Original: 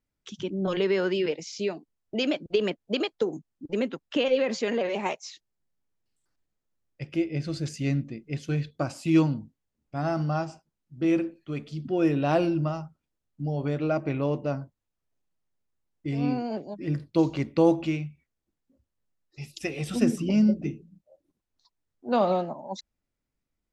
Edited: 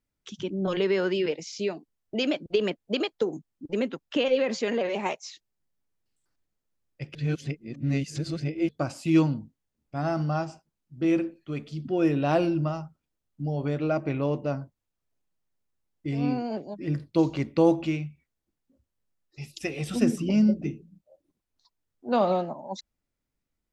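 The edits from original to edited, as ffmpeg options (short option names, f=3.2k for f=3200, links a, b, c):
-filter_complex "[0:a]asplit=3[a][b][c];[a]atrim=end=7.152[d];[b]atrim=start=7.148:end=8.692,asetpts=PTS-STARTPTS,areverse[e];[c]atrim=start=8.688[f];[d][e]acrossfade=d=0.004:c1=hsin:c2=hsin[g];[g][f]acrossfade=d=0.004:c1=hsin:c2=hsin"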